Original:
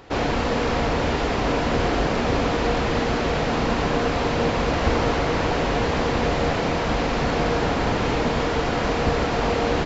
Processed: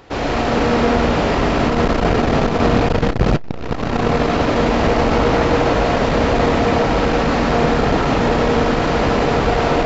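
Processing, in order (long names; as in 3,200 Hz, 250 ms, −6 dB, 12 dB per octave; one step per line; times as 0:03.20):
0:01.45–0:03.24: wind on the microphone 180 Hz −17 dBFS
comb and all-pass reverb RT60 2.6 s, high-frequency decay 0.3×, pre-delay 80 ms, DRR −3 dB
saturating transformer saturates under 220 Hz
level +1.5 dB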